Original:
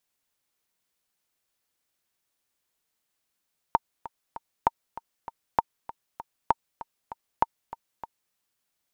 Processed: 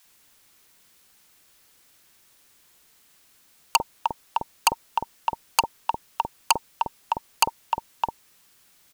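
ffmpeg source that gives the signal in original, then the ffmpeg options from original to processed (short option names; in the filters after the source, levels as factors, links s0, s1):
-f lavfi -i "aevalsrc='pow(10,(-6-17*gte(mod(t,3*60/196),60/196))/20)*sin(2*PI*918*mod(t,60/196))*exp(-6.91*mod(t,60/196)/0.03)':d=4.59:s=44100"
-filter_complex "[0:a]asplit=2[s0][s1];[s1]aeval=exprs='0.473*sin(PI/2*10*val(0)/0.473)':c=same,volume=0.631[s2];[s0][s2]amix=inputs=2:normalize=0,acrossover=split=650[s3][s4];[s3]adelay=50[s5];[s5][s4]amix=inputs=2:normalize=0"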